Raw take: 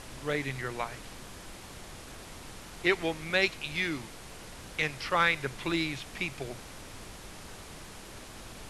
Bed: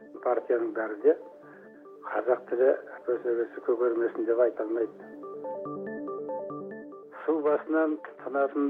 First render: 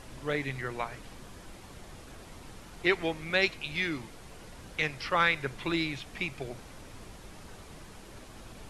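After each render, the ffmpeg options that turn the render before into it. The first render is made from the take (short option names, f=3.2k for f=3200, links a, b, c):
-af "afftdn=nr=6:nf=-47"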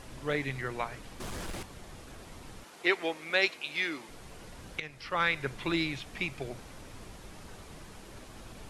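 -filter_complex "[0:a]asettb=1/sr,asplit=3[a][b][c];[a]atrim=end=1.204[d];[b]atrim=start=1.2:end=1.63,asetpts=PTS-STARTPTS,afade=t=in:d=0.004:c=qsin,afade=t=out:st=0.426:d=0.004:c=qsin,aeval=exprs='0.0188*sin(PI/2*2.82*val(0)/0.0188)':c=same[e];[c]atrim=start=1.626[f];[d][e]acrossfade=d=0.004:c1=hsin:c2=qsin[g];[g][f]acrossfade=d=0.004:c1=qsin:c2=hsin,asettb=1/sr,asplit=3[h][i][j];[h]atrim=end=2.644[k];[i]atrim=start=2.64:end=4.09,asetpts=PTS-STARTPTS,afade=t=in:d=0.004:c=qsin,afade=t=out:st=1.446:d=0.004:c=qsin,highpass=340[l];[j]atrim=start=4.086[m];[k][l]acrossfade=d=0.004:c1=hsin:c2=qsin[n];[n][m]acrossfade=d=0.004:c1=qsin:c2=hsin,asplit=2[o][p];[o]atrim=end=4.8,asetpts=PTS-STARTPTS,afade=t=out:st=4.796:d=0.004:c=hsin:silence=0.188365[q];[p]atrim=start=4.8,asetpts=PTS-STARTPTS,afade=t=in:d=0.68:silence=0.188365[r];[q][r]concat=n=2:v=0:a=1"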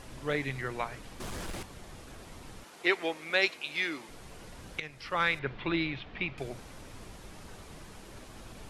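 -filter_complex "[0:a]asettb=1/sr,asplit=3[a][b][c];[a]atrim=end=5.394[d];[b]atrim=start=5.39:end=6.38,asetpts=PTS-STARTPTS,afade=t=in:d=0.004:c=qsin,afade=t=out:st=0.986:d=0.004:c=qsin,lowpass=f=3.7k:w=0.5412,lowpass=f=3.7k:w=1.3066[e];[c]atrim=start=6.376[f];[d][e]acrossfade=d=0.004:c1=hsin:c2=qsin[g];[g][f]acrossfade=d=0.004:c1=qsin:c2=hsin"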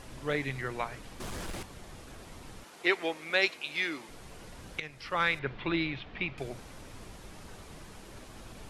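-af anull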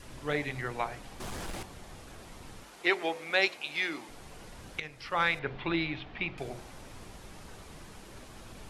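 -af "bandreject=f=45.09:t=h:w=4,bandreject=f=90.18:t=h:w=4,bandreject=f=135.27:t=h:w=4,bandreject=f=180.36:t=h:w=4,bandreject=f=225.45:t=h:w=4,bandreject=f=270.54:t=h:w=4,bandreject=f=315.63:t=h:w=4,bandreject=f=360.72:t=h:w=4,bandreject=f=405.81:t=h:w=4,bandreject=f=450.9:t=h:w=4,bandreject=f=495.99:t=h:w=4,bandreject=f=541.08:t=h:w=4,bandreject=f=586.17:t=h:w=4,bandreject=f=631.26:t=h:w=4,bandreject=f=676.35:t=h:w=4,bandreject=f=721.44:t=h:w=4,adynamicequalizer=threshold=0.00282:dfrequency=770:dqfactor=3.2:tfrequency=770:tqfactor=3.2:attack=5:release=100:ratio=0.375:range=2.5:mode=boostabove:tftype=bell"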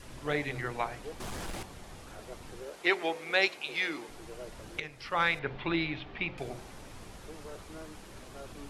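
-filter_complex "[1:a]volume=-22dB[a];[0:a][a]amix=inputs=2:normalize=0"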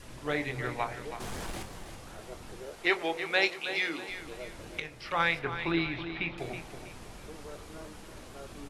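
-filter_complex "[0:a]asplit=2[a][b];[b]adelay=24,volume=-11dB[c];[a][c]amix=inputs=2:normalize=0,aecho=1:1:324|648|972|1296:0.299|0.11|0.0409|0.0151"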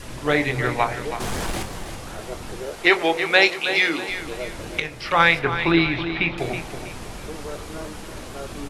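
-af "volume=11.5dB,alimiter=limit=-2dB:level=0:latency=1"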